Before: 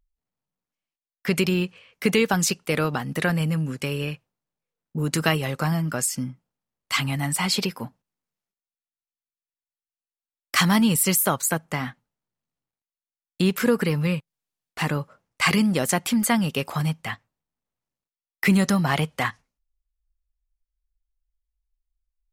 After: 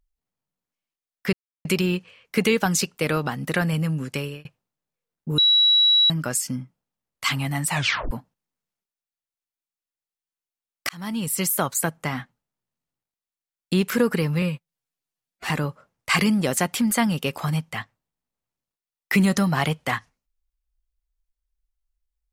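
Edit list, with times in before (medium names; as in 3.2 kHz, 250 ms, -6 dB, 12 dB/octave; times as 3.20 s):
1.33 s: insert silence 0.32 s
3.86–4.13 s: fade out
5.06–5.78 s: bleep 3.9 kHz -13.5 dBFS
7.38 s: tape stop 0.41 s
10.57–11.69 s: fade in equal-power
14.10–14.82 s: stretch 1.5×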